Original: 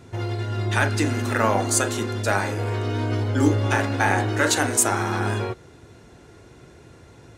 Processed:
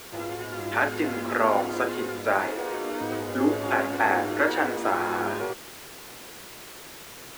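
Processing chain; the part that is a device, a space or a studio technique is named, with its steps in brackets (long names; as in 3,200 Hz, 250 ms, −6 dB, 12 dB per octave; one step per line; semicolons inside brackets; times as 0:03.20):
0:02.47–0:03.01: high-pass filter 250 Hz 24 dB per octave
wax cylinder (band-pass filter 300–2,400 Hz; tape wow and flutter; white noise bed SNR 11 dB)
high-shelf EQ 4,900 Hz −9.5 dB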